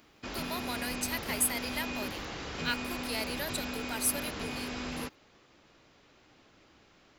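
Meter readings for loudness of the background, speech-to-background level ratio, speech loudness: −37.5 LKFS, 2.5 dB, −35.0 LKFS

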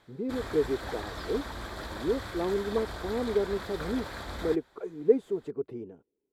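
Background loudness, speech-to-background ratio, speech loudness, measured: −39.5 LKFS, 8.0 dB, −31.5 LKFS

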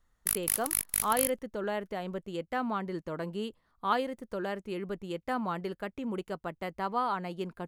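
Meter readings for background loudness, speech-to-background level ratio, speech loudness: −30.0 LKFS, −5.0 dB, −35.0 LKFS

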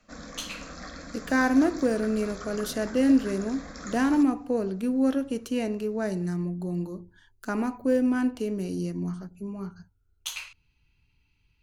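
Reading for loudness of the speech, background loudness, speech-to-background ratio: −27.5 LKFS, −41.5 LKFS, 14.0 dB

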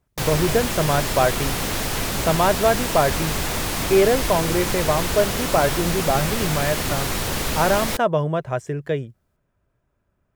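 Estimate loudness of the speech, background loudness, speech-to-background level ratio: −22.5 LKFS, −24.0 LKFS, 1.5 dB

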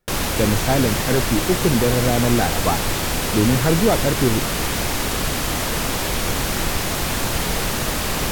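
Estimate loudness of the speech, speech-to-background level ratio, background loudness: −21.0 LKFS, 0.5 dB, −21.5 LKFS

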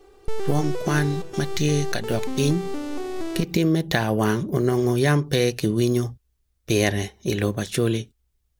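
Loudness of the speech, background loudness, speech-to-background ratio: −23.5 LKFS, −32.0 LKFS, 8.5 dB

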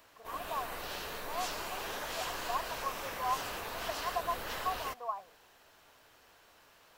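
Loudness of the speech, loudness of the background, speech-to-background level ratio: −40.0 LKFS, −39.5 LKFS, −0.5 dB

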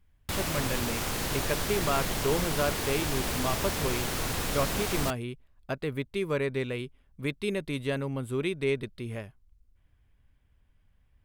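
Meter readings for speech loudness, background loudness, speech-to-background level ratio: −32.5 LKFS, −31.0 LKFS, −1.5 dB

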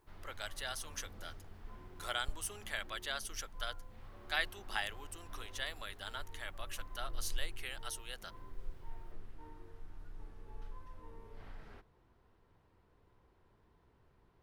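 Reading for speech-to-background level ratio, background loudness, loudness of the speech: 12.5 dB, −54.5 LKFS, −42.0 LKFS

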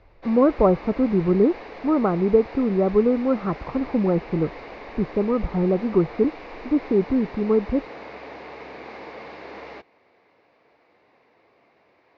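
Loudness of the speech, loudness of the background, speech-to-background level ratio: −22.0 LKFS, −39.0 LKFS, 17.0 dB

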